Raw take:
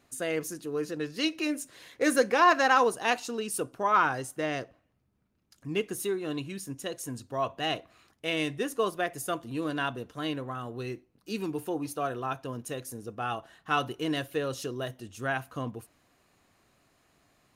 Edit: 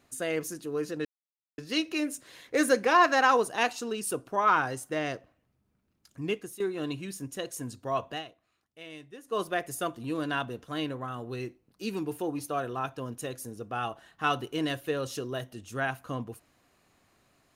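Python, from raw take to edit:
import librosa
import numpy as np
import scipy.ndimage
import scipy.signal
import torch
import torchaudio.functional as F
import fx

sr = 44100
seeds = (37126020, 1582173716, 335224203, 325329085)

y = fx.edit(x, sr, fx.insert_silence(at_s=1.05, length_s=0.53),
    fx.fade_out_to(start_s=5.72, length_s=0.35, floor_db=-14.5),
    fx.fade_down_up(start_s=7.57, length_s=1.3, db=-15.5, fade_s=0.14), tone=tone)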